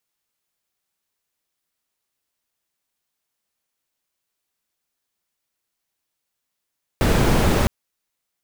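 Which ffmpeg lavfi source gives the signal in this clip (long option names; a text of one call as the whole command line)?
ffmpeg -f lavfi -i "anoisesrc=color=brown:amplitude=0.7:duration=0.66:sample_rate=44100:seed=1" out.wav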